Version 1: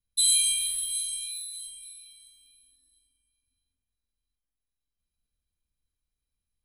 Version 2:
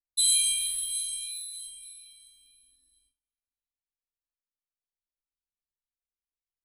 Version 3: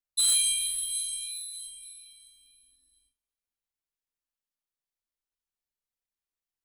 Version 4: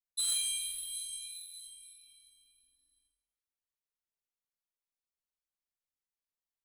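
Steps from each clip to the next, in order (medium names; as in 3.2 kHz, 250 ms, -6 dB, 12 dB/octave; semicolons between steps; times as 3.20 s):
gate with hold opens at -60 dBFS; trim -1 dB
overload inside the chain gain 17.5 dB
reverberation RT60 0.85 s, pre-delay 23 ms, DRR 6.5 dB; trim -8 dB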